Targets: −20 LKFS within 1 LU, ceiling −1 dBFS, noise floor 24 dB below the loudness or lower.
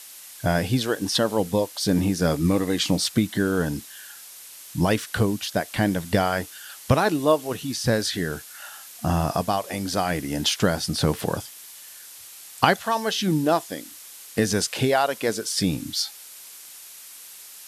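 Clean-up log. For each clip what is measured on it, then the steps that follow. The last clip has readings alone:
background noise floor −44 dBFS; target noise floor −48 dBFS; integrated loudness −24.0 LKFS; sample peak −2.5 dBFS; target loudness −20.0 LKFS
→ broadband denoise 6 dB, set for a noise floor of −44 dBFS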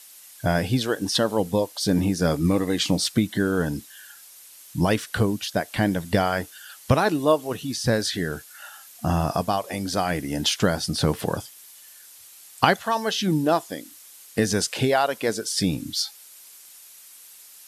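background noise floor −48 dBFS; integrated loudness −24.0 LKFS; sample peak −2.5 dBFS; target loudness −20.0 LKFS
→ level +4 dB
brickwall limiter −1 dBFS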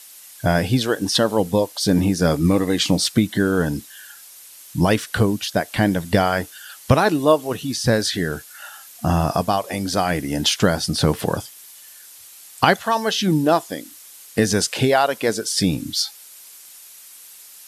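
integrated loudness −20.0 LKFS; sample peak −1.0 dBFS; background noise floor −44 dBFS

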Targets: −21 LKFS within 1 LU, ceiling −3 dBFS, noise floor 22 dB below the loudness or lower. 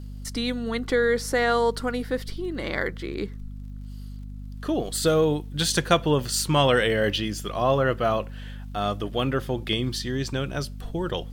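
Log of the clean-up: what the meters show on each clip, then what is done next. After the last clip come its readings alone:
crackle rate 41 per second; mains hum 50 Hz; hum harmonics up to 250 Hz; level of the hum −34 dBFS; integrated loudness −25.0 LKFS; sample peak −5.5 dBFS; target loudness −21.0 LKFS
→ click removal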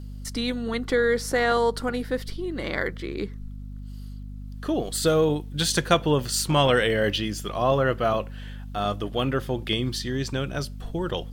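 crackle rate 0.71 per second; mains hum 50 Hz; hum harmonics up to 250 Hz; level of the hum −35 dBFS
→ mains-hum notches 50/100/150/200/250 Hz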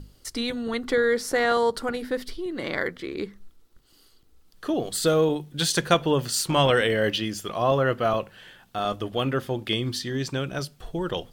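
mains hum none found; integrated loudness −25.5 LKFS; sample peak −5.5 dBFS; target loudness −21.0 LKFS
→ level +4.5 dB
brickwall limiter −3 dBFS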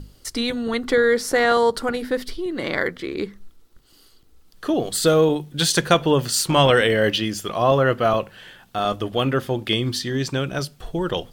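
integrated loudness −21.0 LKFS; sample peak −3.0 dBFS; background noise floor −54 dBFS

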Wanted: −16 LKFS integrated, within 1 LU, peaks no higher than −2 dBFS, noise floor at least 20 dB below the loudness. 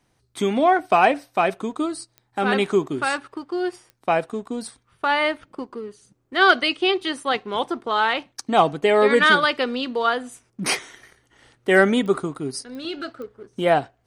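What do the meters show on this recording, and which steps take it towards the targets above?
number of clicks 5; integrated loudness −21.5 LKFS; sample peak −3.0 dBFS; target loudness −16.0 LKFS
→ click removal
level +5.5 dB
brickwall limiter −2 dBFS

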